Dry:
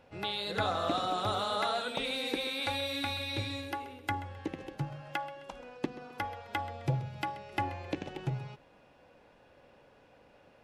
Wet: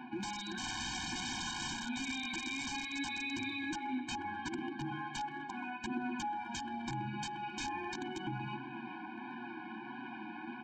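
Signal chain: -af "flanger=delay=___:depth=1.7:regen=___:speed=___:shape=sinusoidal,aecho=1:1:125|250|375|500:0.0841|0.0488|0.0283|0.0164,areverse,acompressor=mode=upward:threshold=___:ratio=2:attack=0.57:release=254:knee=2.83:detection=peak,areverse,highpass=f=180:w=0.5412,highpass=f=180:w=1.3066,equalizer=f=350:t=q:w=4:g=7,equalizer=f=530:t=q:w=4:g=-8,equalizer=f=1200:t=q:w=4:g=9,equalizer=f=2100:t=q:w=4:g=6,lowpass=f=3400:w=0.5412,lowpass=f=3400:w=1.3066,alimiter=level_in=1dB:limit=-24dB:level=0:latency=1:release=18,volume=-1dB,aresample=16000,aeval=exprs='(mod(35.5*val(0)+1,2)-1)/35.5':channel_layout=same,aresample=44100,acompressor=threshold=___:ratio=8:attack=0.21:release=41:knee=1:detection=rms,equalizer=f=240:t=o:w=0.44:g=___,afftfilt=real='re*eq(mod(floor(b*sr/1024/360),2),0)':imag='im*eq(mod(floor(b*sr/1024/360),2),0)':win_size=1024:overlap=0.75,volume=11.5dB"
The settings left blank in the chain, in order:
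7.9, 5, 1.5, -39dB, -44dB, 6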